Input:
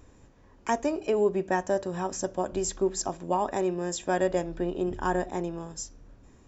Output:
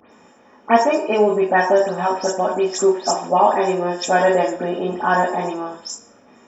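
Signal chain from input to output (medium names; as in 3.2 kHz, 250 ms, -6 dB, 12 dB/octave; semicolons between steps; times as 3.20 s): delay that grows with frequency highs late, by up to 130 ms; high-pass 280 Hz 12 dB/octave; reverberation RT60 0.60 s, pre-delay 3 ms, DRR 2 dB; trim +5 dB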